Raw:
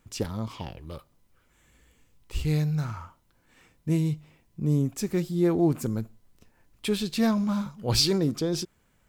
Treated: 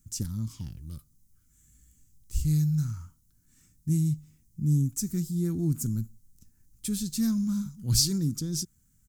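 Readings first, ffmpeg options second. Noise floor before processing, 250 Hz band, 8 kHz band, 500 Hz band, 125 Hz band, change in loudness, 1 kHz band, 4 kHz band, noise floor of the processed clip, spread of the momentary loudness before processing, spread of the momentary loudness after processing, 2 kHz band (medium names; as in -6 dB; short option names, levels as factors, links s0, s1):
-67 dBFS, -2.5 dB, +5.0 dB, -14.5 dB, +1.0 dB, -1.5 dB, under -15 dB, -3.5 dB, -66 dBFS, 16 LU, 15 LU, under -10 dB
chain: -af "firequalizer=gain_entry='entry(130,0);entry(260,-6);entry(480,-26);entry(710,-28);entry(1400,-15);entry(2500,-19);entry(6300,4)':delay=0.05:min_phase=1,volume=1.26"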